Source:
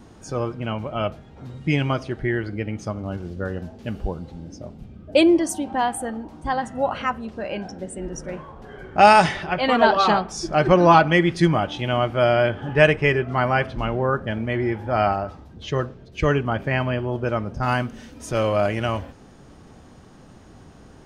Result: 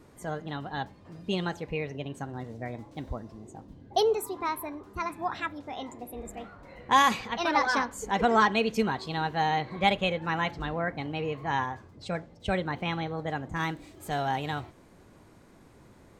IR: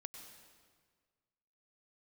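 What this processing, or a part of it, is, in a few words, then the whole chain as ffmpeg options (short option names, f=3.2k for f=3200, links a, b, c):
nightcore: -af "asetrate=57330,aresample=44100,volume=-8.5dB"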